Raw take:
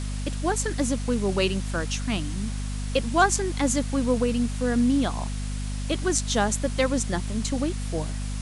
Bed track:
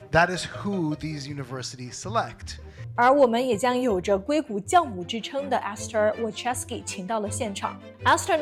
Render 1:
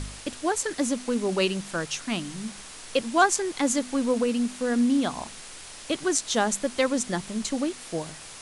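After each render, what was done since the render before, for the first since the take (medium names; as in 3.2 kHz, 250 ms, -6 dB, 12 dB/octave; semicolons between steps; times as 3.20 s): de-hum 50 Hz, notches 5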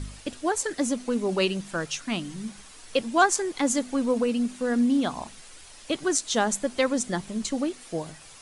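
noise reduction 8 dB, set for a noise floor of -43 dBFS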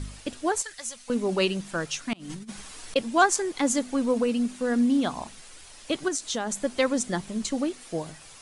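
0.62–1.10 s: amplifier tone stack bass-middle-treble 10-0-10; 2.13–2.96 s: compressor with a negative ratio -38 dBFS, ratio -0.5; 6.08–6.57 s: compression, threshold -25 dBFS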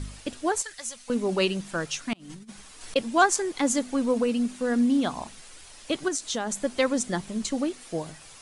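2.14–2.81 s: gain -5 dB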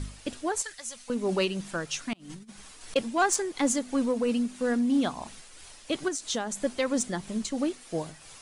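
saturation -12.5 dBFS, distortion -21 dB; tremolo 3 Hz, depth 35%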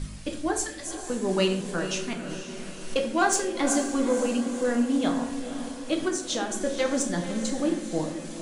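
echo that smears into a reverb 494 ms, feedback 55%, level -10 dB; simulated room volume 100 m³, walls mixed, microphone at 0.59 m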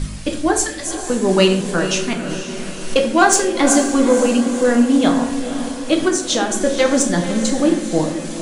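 trim +10.5 dB; peak limiter -1 dBFS, peak gain reduction 1 dB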